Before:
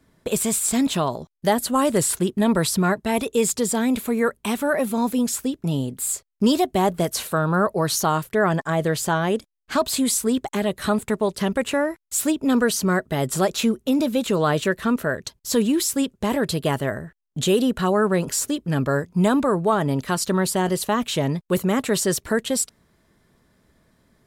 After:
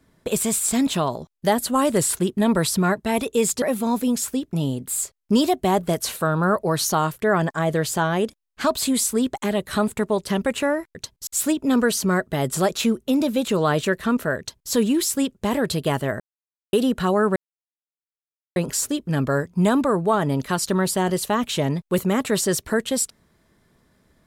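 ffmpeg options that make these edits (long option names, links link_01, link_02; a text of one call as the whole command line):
ffmpeg -i in.wav -filter_complex "[0:a]asplit=7[link_01][link_02][link_03][link_04][link_05][link_06][link_07];[link_01]atrim=end=3.622[link_08];[link_02]atrim=start=4.728:end=12.062[link_09];[link_03]atrim=start=15.178:end=15.502[link_10];[link_04]atrim=start=12.058:end=16.99,asetpts=PTS-STARTPTS,afade=type=out:start_time=4.928:duration=0.004:curve=hsin[link_11];[link_05]atrim=start=16.99:end=17.52,asetpts=PTS-STARTPTS,volume=0[link_12];[link_06]atrim=start=17.52:end=18.15,asetpts=PTS-STARTPTS,afade=type=in:duration=0.004:curve=hsin,afade=type=out:start_time=0.626:duration=0.004:curve=hsin,apad=pad_dur=1.2[link_13];[link_07]atrim=start=18.15,asetpts=PTS-STARTPTS,afade=type=in:duration=0.004:curve=hsin[link_14];[link_08][link_09]acrossfade=duration=0.004:curve1=hsin:curve2=hsin[link_15];[link_15][link_10]acrossfade=duration=0.004:curve1=hsin:curve2=hsin[link_16];[link_11][link_12][link_13][link_14]concat=n=4:v=0:a=1[link_17];[link_16][link_17]acrossfade=duration=0.004:curve1=hsin:curve2=hsin" out.wav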